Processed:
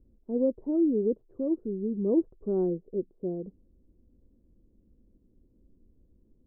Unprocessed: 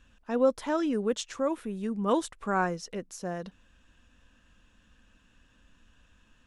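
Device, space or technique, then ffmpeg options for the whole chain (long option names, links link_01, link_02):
under water: -af "lowpass=frequency=470:width=0.5412,lowpass=frequency=470:width=1.3066,equalizer=frequency=370:width_type=o:width=0.43:gain=10.5"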